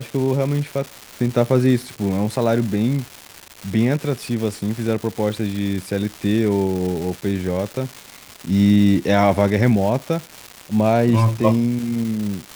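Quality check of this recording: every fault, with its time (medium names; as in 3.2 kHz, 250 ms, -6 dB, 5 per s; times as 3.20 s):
crackle 560 per s -26 dBFS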